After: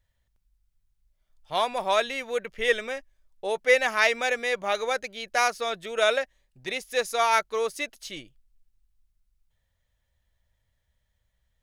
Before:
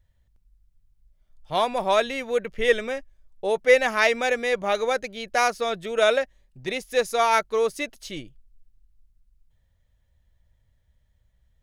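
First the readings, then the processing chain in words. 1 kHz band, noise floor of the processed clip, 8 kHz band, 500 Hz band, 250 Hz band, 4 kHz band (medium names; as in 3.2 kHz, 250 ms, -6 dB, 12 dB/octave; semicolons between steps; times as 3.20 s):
-2.0 dB, -76 dBFS, 0.0 dB, -4.5 dB, -7.5 dB, 0.0 dB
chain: bass shelf 480 Hz -9.5 dB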